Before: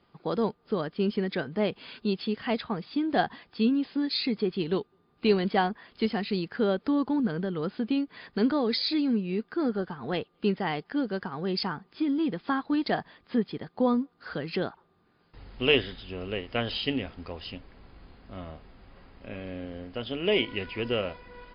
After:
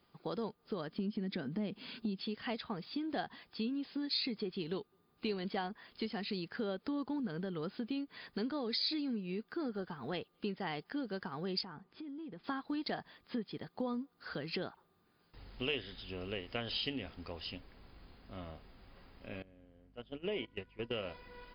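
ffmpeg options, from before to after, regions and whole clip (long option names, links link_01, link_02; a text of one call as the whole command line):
ffmpeg -i in.wav -filter_complex "[0:a]asettb=1/sr,asplit=3[link_01][link_02][link_03];[link_01]atrim=end=0.914[link_04];[link_02]atrim=start=0.91:end=2.21,asetpts=PTS-STARTPTS,afade=type=in:duration=0.004:curve=qsin,afade=type=out:start_time=1.296:duration=0.004:curve=qsin,equalizer=frequency=220:width_type=o:width=1:gain=13,acompressor=threshold=-25dB:ratio=2:attack=3.2:release=140:knee=1:detection=peak[link_05];[link_03]atrim=start=2.206[link_06];[link_04][link_05]acrossfade=duration=0.004:curve1=hsin:curve2=qsin[link_07];[link_07][link_06]acrossfade=duration=0.004:curve1=qsin:curve2=hsin,asettb=1/sr,asplit=3[link_08][link_09][link_10];[link_08]atrim=end=11.614[link_11];[link_09]atrim=start=11.61:end=12.44,asetpts=PTS-STARTPTS,afade=type=in:duration=0.004:curve=qsin,afade=type=out:start_time=0.826:duration=0.004:curve=qsin,lowpass=frequency=1700:poles=1,acompressor=threshold=-37dB:ratio=10:attack=3.2:release=140:knee=1:detection=peak[link_12];[link_10]atrim=start=12.436[link_13];[link_11][link_12]acrossfade=duration=0.004:curve1=hsin:curve2=qsin[link_14];[link_14][link_13]acrossfade=duration=0.004:curve1=qsin:curve2=hsin,asettb=1/sr,asplit=3[link_15][link_16][link_17];[link_15]atrim=end=19.424[link_18];[link_16]atrim=start=19.42:end=20.91,asetpts=PTS-STARTPTS,afade=type=in:duration=0.004:curve=qsin,afade=type=out:start_time=1.486:duration=0.004:curve=qsin,agate=range=-18dB:threshold=-32dB:ratio=16:release=100:detection=peak,lowpass=frequency=1700:poles=1,aeval=exprs='val(0)+0.00112*(sin(2*PI*50*n/s)+sin(2*PI*2*50*n/s)/2+sin(2*PI*3*50*n/s)/3+sin(2*PI*4*50*n/s)/4+sin(2*PI*5*50*n/s)/5)':channel_layout=same[link_19];[link_17]atrim=start=20.906[link_20];[link_18][link_19]acrossfade=duration=0.004:curve1=hsin:curve2=qsin[link_21];[link_21][link_20]acrossfade=duration=0.004:curve1=qsin:curve2=hsin,acompressor=threshold=-30dB:ratio=3,aemphasis=mode=production:type=50fm,volume=-6dB" out.wav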